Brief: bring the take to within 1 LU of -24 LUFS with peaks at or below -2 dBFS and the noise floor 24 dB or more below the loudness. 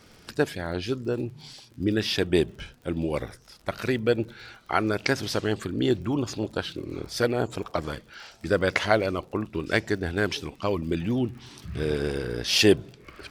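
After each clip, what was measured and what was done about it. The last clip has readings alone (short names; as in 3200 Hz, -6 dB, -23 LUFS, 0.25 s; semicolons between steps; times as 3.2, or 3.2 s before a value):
ticks 50/s; loudness -27.0 LUFS; peak -3.5 dBFS; loudness target -24.0 LUFS
-> de-click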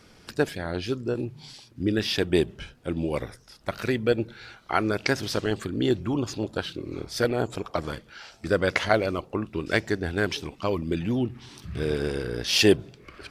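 ticks 0/s; loudness -27.0 LUFS; peak -3.5 dBFS; loudness target -24.0 LUFS
-> gain +3 dB; limiter -2 dBFS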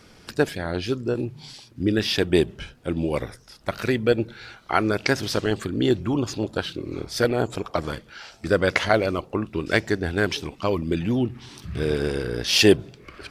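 loudness -24.0 LUFS; peak -2.0 dBFS; noise floor -51 dBFS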